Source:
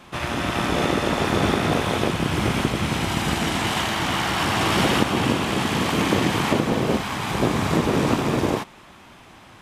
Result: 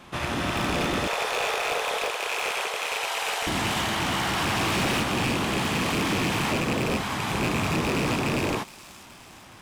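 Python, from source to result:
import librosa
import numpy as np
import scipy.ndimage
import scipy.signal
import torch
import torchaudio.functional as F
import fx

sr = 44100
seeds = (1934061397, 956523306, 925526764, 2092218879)

y = fx.rattle_buzz(x, sr, strikes_db=-24.0, level_db=-11.0)
y = fx.cheby1_highpass(y, sr, hz=440.0, order=5, at=(1.07, 3.47))
y = np.clip(y, -10.0 ** (-20.5 / 20.0), 10.0 ** (-20.5 / 20.0))
y = fx.echo_wet_highpass(y, sr, ms=419, feedback_pct=61, hz=5000.0, wet_db=-10)
y = F.gain(torch.from_numpy(y), -1.5).numpy()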